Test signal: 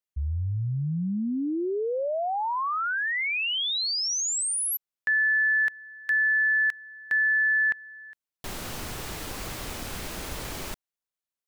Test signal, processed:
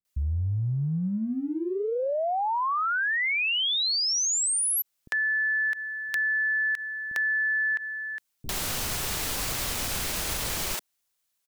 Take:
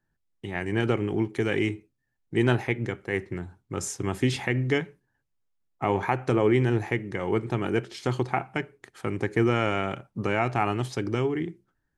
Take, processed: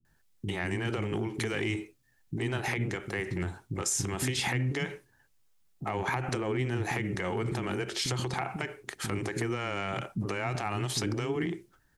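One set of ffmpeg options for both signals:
-filter_complex "[0:a]highshelf=f=2700:g=7.5,acompressor=threshold=0.0224:ratio=10:attack=1.1:release=86:knee=6:detection=peak,acrossover=split=300[s0][s1];[s1]adelay=50[s2];[s0][s2]amix=inputs=2:normalize=0,volume=2.66"

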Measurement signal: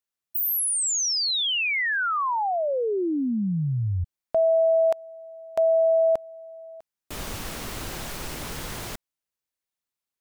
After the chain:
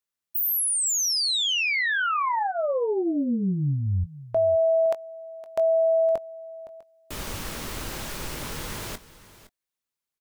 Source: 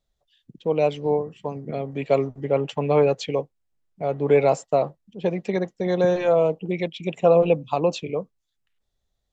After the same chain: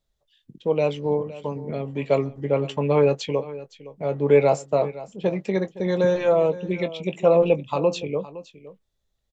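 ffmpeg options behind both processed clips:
-filter_complex "[0:a]bandreject=f=720:w=12,asplit=2[s0][s1];[s1]adelay=21,volume=0.251[s2];[s0][s2]amix=inputs=2:normalize=0,asplit=2[s3][s4];[s4]aecho=0:1:514:0.141[s5];[s3][s5]amix=inputs=2:normalize=0"

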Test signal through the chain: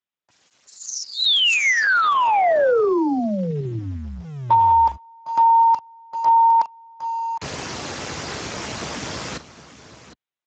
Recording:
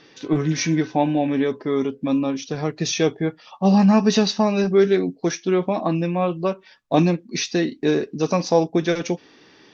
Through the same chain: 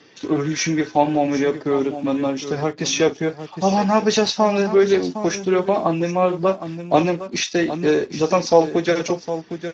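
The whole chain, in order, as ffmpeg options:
-filter_complex "[0:a]aecho=1:1:42|759:0.188|0.237,asplit=2[s0][s1];[s1]aeval=exprs='val(0)*gte(abs(val(0)),0.0211)':c=same,volume=0.376[s2];[s0][s2]amix=inputs=2:normalize=0,acrossover=split=360|3000[s3][s4][s5];[s3]acompressor=threshold=0.0355:ratio=4[s6];[s6][s4][s5]amix=inputs=3:normalize=0,volume=1.19" -ar 16000 -c:a libspeex -b:a 13k

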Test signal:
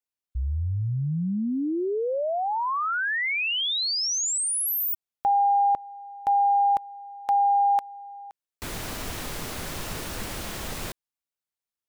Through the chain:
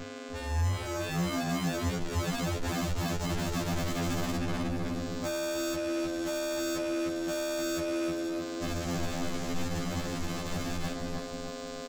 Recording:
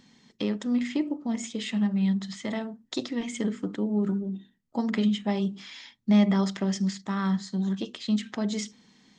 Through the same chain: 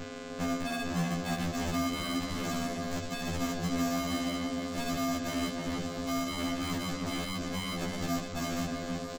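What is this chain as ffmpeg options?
-filter_complex "[0:a]highshelf=f=2400:g=10.5,aeval=exprs='val(0)+0.02*(sin(2*PI*50*n/s)+sin(2*PI*2*50*n/s)/2+sin(2*PI*3*50*n/s)/3+sin(2*PI*4*50*n/s)/4+sin(2*PI*5*50*n/s)/5)':c=same,aresample=16000,acrusher=samples=34:mix=1:aa=0.000001,aresample=44100,equalizer=f=63:t=o:w=0.58:g=-13,bandreject=f=50:t=h:w=6,bandreject=f=100:t=h:w=6,bandreject=f=150:t=h:w=6,asplit=2[s0][s1];[s1]adelay=311,lowpass=f=1700:p=1,volume=0.473,asplit=2[s2][s3];[s3]adelay=311,lowpass=f=1700:p=1,volume=0.44,asplit=2[s4][s5];[s5]adelay=311,lowpass=f=1700:p=1,volume=0.44,asplit=2[s6][s7];[s7]adelay=311,lowpass=f=1700:p=1,volume=0.44,asplit=2[s8][s9];[s9]adelay=311,lowpass=f=1700:p=1,volume=0.44[s10];[s0][s2][s4][s6][s8][s10]amix=inputs=6:normalize=0,acrossover=split=280|3300[s11][s12][s13];[s13]dynaudnorm=f=160:g=17:m=2.24[s14];[s11][s12][s14]amix=inputs=3:normalize=0,alimiter=limit=0.168:level=0:latency=1:release=463,asoftclip=type=hard:threshold=0.0237,afftfilt=real='re*2*eq(mod(b,4),0)':imag='im*2*eq(mod(b,4),0)':win_size=2048:overlap=0.75,volume=1.78"

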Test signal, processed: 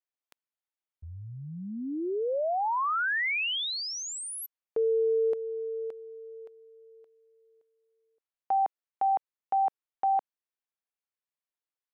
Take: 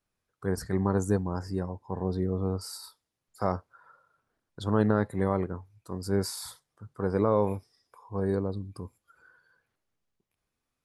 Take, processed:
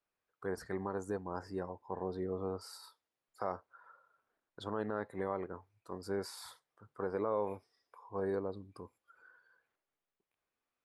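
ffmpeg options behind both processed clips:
-af "alimiter=limit=0.126:level=0:latency=1:release=245,bass=f=250:g=-14,treble=f=4000:g=-10,volume=0.75"

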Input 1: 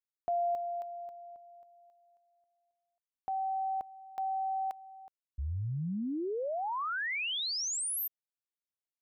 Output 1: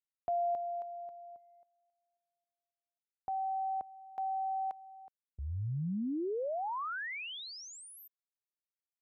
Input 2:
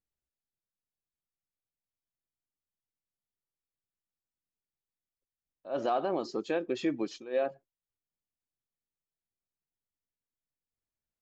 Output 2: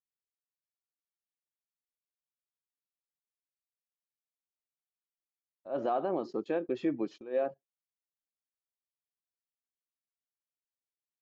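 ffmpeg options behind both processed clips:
-af "highpass=78,agate=range=0.158:threshold=0.00158:ratio=16:release=35:detection=peak,lowpass=f=1200:p=1"

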